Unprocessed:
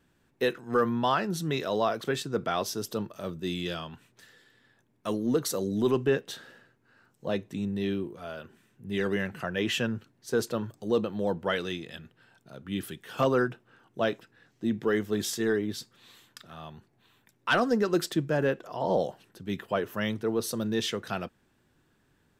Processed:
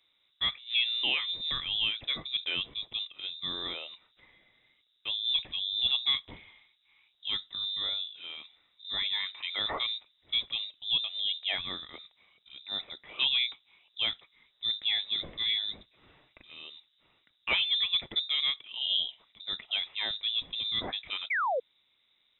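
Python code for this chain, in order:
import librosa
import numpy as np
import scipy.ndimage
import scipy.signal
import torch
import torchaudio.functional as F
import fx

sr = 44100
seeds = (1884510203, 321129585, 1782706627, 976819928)

y = fx.freq_invert(x, sr, carrier_hz=3800)
y = fx.spec_paint(y, sr, seeds[0], shape='fall', start_s=21.3, length_s=0.3, low_hz=460.0, high_hz=2400.0, level_db=-25.0)
y = y * librosa.db_to_amplitude(-3.5)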